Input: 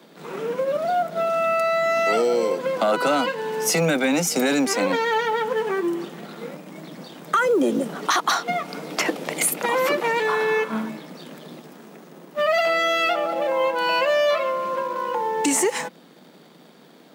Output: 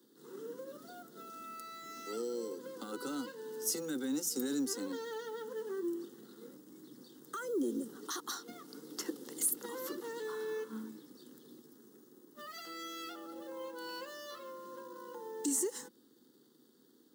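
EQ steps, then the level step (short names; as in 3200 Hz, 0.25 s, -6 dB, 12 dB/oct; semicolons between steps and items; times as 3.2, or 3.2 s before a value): passive tone stack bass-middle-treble 10-0-1; high shelf 12000 Hz +7 dB; fixed phaser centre 640 Hz, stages 6; +9.0 dB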